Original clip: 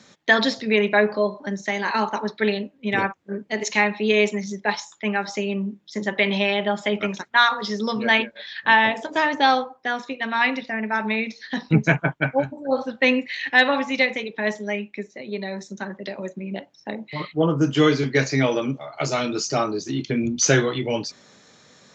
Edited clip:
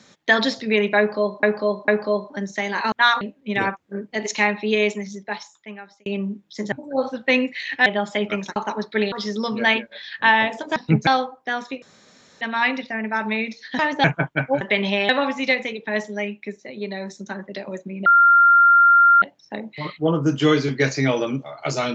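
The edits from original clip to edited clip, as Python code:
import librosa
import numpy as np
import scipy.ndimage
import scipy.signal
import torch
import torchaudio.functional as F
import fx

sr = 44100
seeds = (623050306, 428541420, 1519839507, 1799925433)

y = fx.edit(x, sr, fx.repeat(start_s=0.98, length_s=0.45, count=3),
    fx.swap(start_s=2.02, length_s=0.56, other_s=7.27, other_length_s=0.29),
    fx.fade_out_span(start_s=3.99, length_s=1.44),
    fx.swap(start_s=6.09, length_s=0.48, other_s=12.46, other_length_s=1.14),
    fx.swap(start_s=9.2, length_s=0.25, other_s=11.58, other_length_s=0.31),
    fx.insert_room_tone(at_s=10.2, length_s=0.59),
    fx.insert_tone(at_s=16.57, length_s=1.16, hz=1390.0, db=-9.5), tone=tone)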